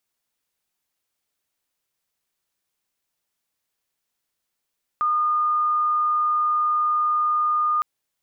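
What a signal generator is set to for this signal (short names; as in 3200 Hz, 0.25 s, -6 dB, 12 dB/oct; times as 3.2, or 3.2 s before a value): tone sine 1220 Hz -18 dBFS 2.81 s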